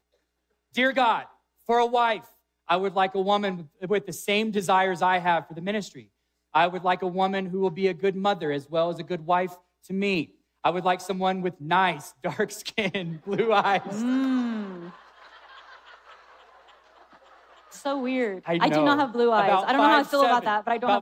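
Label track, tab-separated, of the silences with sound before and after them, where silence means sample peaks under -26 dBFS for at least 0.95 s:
14.630000	17.860000	silence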